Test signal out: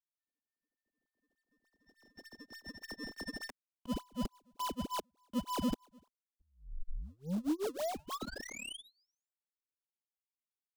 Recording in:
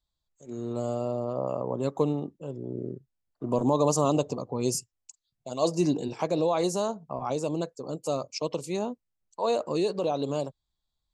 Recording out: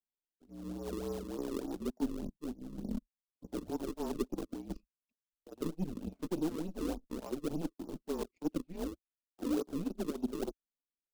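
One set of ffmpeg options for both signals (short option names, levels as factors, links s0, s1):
-filter_complex "[0:a]highpass=f=150:t=q:w=0.5412,highpass=f=150:t=q:w=1.307,lowpass=f=2800:t=q:w=0.5176,lowpass=f=2800:t=q:w=0.7071,lowpass=f=2800:t=q:w=1.932,afreqshift=-170,areverse,acompressor=threshold=0.00891:ratio=6,areverse,flanger=delay=4.5:depth=2.6:regen=2:speed=0.98:shape=sinusoidal,aeval=exprs='0.0224*(cos(1*acos(clip(val(0)/0.0224,-1,1)))-cos(1*PI/2))+0.00141*(cos(3*acos(clip(val(0)/0.0224,-1,1)))-cos(3*PI/2))+0.000224*(cos(4*acos(clip(val(0)/0.0224,-1,1)))-cos(4*PI/2))+0.00224*(cos(7*acos(clip(val(0)/0.0224,-1,1)))-cos(7*PI/2))':c=same,acrossover=split=250|1400[s0][s1][s2];[s1]acrusher=samples=33:mix=1:aa=0.000001:lfo=1:lforange=52.8:lforate=3.4[s3];[s0][s3][s2]amix=inputs=3:normalize=0,equalizer=f=125:t=o:w=1:g=-12,equalizer=f=250:t=o:w=1:g=10,equalizer=f=2000:t=o:w=1:g=-11,volume=2.82"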